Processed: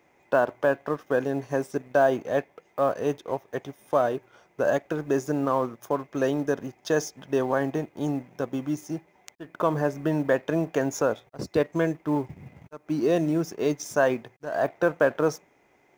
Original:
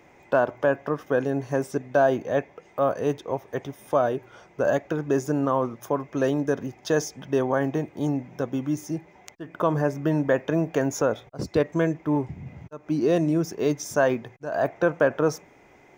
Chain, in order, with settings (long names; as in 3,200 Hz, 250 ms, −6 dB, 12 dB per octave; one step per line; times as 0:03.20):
mu-law and A-law mismatch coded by A
low-shelf EQ 140 Hz −6.5 dB